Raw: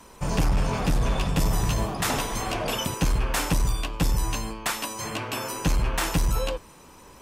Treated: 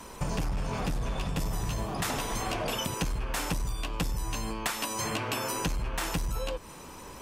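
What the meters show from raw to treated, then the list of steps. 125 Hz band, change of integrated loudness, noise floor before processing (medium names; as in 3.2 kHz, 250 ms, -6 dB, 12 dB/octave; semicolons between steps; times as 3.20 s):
-7.0 dB, -5.5 dB, -49 dBFS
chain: compression 10:1, threshold -32 dBFS, peak gain reduction 13 dB; trim +4 dB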